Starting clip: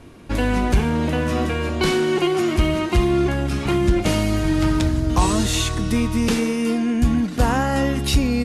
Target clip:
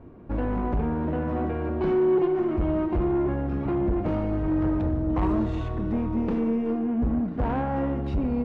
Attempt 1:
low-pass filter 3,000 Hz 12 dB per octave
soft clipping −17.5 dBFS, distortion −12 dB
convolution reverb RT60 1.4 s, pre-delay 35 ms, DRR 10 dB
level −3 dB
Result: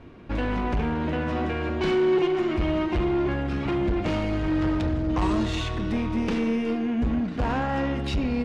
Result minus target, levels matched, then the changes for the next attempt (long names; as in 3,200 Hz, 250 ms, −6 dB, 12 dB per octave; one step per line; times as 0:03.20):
4,000 Hz band +16.0 dB
change: low-pass filter 980 Hz 12 dB per octave